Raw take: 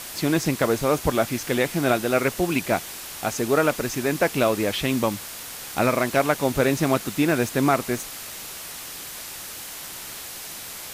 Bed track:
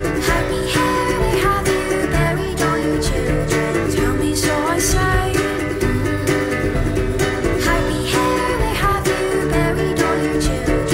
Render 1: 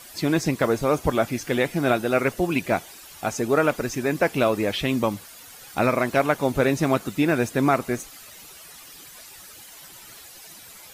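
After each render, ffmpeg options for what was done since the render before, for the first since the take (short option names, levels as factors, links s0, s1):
-af "afftdn=nr=12:nf=-37"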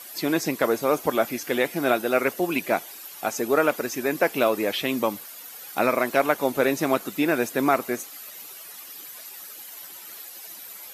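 -af "highpass=260,equalizer=f=12000:w=6.4:g=14.5"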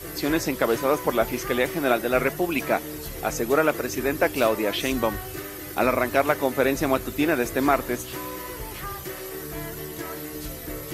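-filter_complex "[1:a]volume=0.126[s0];[0:a][s0]amix=inputs=2:normalize=0"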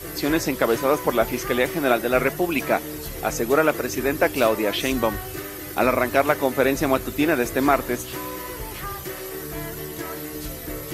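-af "volume=1.26"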